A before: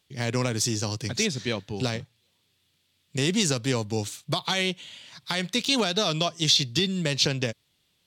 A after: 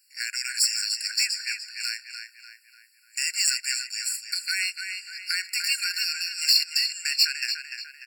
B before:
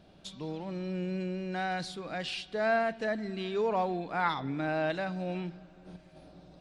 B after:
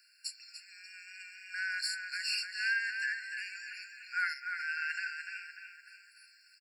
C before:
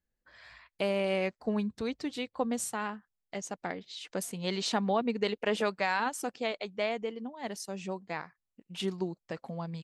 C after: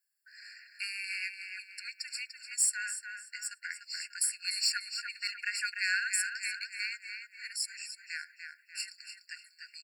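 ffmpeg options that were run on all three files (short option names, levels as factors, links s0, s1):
-filter_complex "[0:a]equalizer=f=1000:t=o:w=0.73:g=14.5,aexciter=amount=1.6:drive=9.9:freq=3200,asplit=2[s0][s1];[s1]adelay=295,lowpass=f=4000:p=1,volume=0.531,asplit=2[s2][s3];[s3]adelay=295,lowpass=f=4000:p=1,volume=0.5,asplit=2[s4][s5];[s5]adelay=295,lowpass=f=4000:p=1,volume=0.5,asplit=2[s6][s7];[s7]adelay=295,lowpass=f=4000:p=1,volume=0.5,asplit=2[s8][s9];[s9]adelay=295,lowpass=f=4000:p=1,volume=0.5,asplit=2[s10][s11];[s11]adelay=295,lowpass=f=4000:p=1,volume=0.5[s12];[s2][s4][s6][s8][s10][s12]amix=inputs=6:normalize=0[s13];[s0][s13]amix=inputs=2:normalize=0,afftfilt=real='re*eq(mod(floor(b*sr/1024/1400),2),1)':imag='im*eq(mod(floor(b*sr/1024/1400),2),1)':win_size=1024:overlap=0.75"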